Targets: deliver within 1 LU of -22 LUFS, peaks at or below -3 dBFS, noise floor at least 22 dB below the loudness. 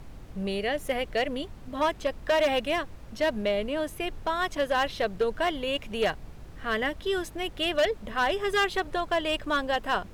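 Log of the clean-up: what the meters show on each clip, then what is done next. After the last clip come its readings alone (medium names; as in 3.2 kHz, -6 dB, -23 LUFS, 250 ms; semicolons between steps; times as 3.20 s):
clipped samples 1.2%; clipping level -19.0 dBFS; noise floor -45 dBFS; noise floor target -51 dBFS; loudness -28.5 LUFS; peak level -19.0 dBFS; loudness target -22.0 LUFS
-> clip repair -19 dBFS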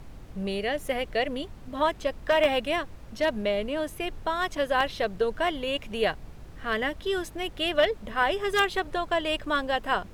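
clipped samples 0.0%; noise floor -45 dBFS; noise floor target -50 dBFS
-> noise print and reduce 6 dB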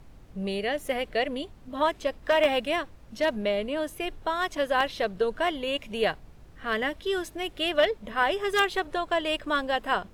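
noise floor -50 dBFS; loudness -27.5 LUFS; peak level -10.0 dBFS; loudness target -22.0 LUFS
-> trim +5.5 dB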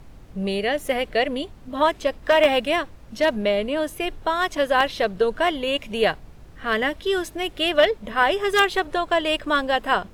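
loudness -22.0 LUFS; peak level -4.5 dBFS; noise floor -45 dBFS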